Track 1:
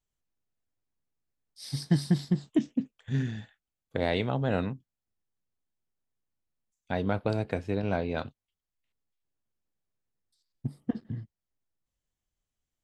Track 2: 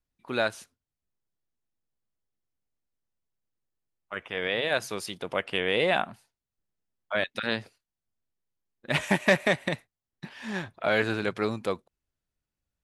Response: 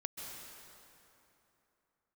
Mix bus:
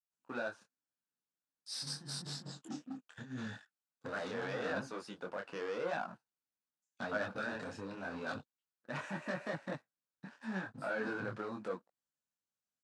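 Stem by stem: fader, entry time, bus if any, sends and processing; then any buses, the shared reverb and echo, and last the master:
−2.0 dB, 0.10 s, no send, brickwall limiter −20 dBFS, peak gain reduction 7.5 dB; compressor whose output falls as the input rises −34 dBFS, ratio −0.5; soft clipping −33.5 dBFS, distortion −9 dB
−5.5 dB, 0.00 s, no send, low-pass filter 1,200 Hz 6 dB per octave; noise gate −48 dBFS, range −11 dB; brickwall limiter −20.5 dBFS, peak gain reduction 9 dB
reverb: not used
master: leveller curve on the samples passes 2; loudspeaker in its box 220–9,400 Hz, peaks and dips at 390 Hz −8 dB, 650 Hz −4 dB, 1,500 Hz +6 dB, 2,100 Hz −8 dB, 3,200 Hz −6 dB; micro pitch shift up and down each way 29 cents

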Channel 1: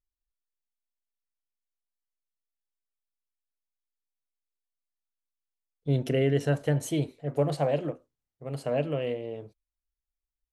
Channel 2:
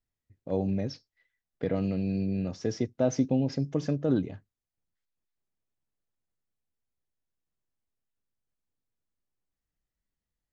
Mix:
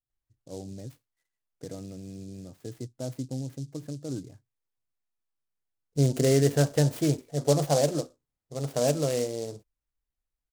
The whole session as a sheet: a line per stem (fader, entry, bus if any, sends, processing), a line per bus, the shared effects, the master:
+3.0 dB, 0.10 s, no send, no processing
−11.0 dB, 0.00 s, no send, thirty-one-band graphic EQ 125 Hz +10 dB, 200 Hz −4 dB, 315 Hz +4 dB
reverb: not used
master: high-shelf EQ 5,800 Hz −10.5 dB; short delay modulated by noise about 5,800 Hz, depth 0.072 ms

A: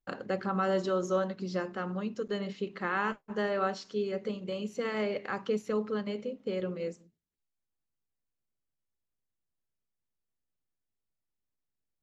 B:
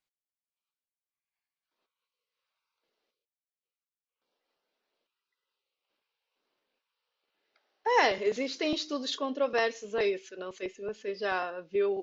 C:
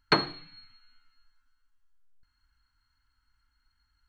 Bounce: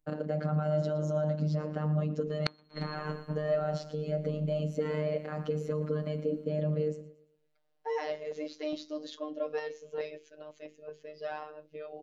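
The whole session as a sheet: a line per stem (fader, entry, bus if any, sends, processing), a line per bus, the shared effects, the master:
−1.5 dB, 0.00 s, bus A, no send, echo send −19 dB, low-shelf EQ 180 Hz +10.5 dB
−10.5 dB, 0.00 s, bus A, no send, no echo send, parametric band 150 Hz −7 dB 1.7 octaves
−1.5 dB, 2.35 s, no bus, no send, echo send −11 dB, high-shelf EQ 3,100 Hz +10 dB; automatic ducking −16 dB, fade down 1.10 s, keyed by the second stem
bus A: 0.0 dB, mains-hum notches 50/100/150/200/250/300/350/400/450 Hz; brickwall limiter −30 dBFS, peak gain reduction 11 dB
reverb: not used
echo: repeating echo 115 ms, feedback 37%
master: hollow resonant body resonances 240/520 Hz, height 14 dB, ringing for 25 ms; phases set to zero 152 Hz; gate with flip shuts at −16 dBFS, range −36 dB

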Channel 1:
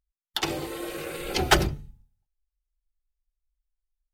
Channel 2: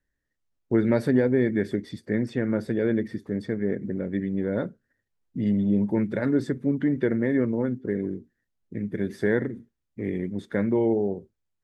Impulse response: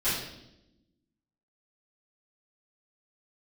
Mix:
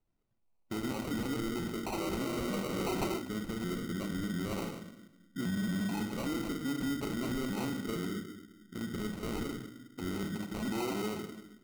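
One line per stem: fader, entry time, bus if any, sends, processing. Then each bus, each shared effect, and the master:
+3.0 dB, 1.50 s, no send, four-pole ladder high-pass 270 Hz, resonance 40%; envelope-controlled low-pass 620–2,400 Hz up, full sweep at −30 dBFS
−4.5 dB, 0.00 s, send −13 dB, octave-band graphic EQ 125/500/1,000/2,000/4,000 Hz −9/−11/+11/+3/+5 dB; brickwall limiter −19.5 dBFS, peak gain reduction 10.5 dB; pitch modulation by a square or saw wave saw up 4.4 Hz, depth 250 cents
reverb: on, RT60 0.90 s, pre-delay 3 ms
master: decimation without filtering 26×; soft clipping −23 dBFS, distortion −11 dB; brickwall limiter −28.5 dBFS, peak gain reduction 5.5 dB

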